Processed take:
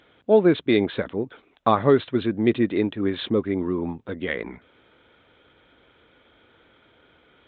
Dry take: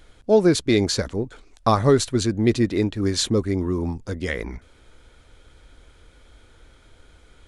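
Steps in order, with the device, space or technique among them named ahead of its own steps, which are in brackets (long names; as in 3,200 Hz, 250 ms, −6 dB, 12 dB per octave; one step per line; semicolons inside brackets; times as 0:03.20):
Bluetooth headset (high-pass filter 170 Hz 12 dB per octave; downsampling to 8,000 Hz; SBC 64 kbit/s 16,000 Hz)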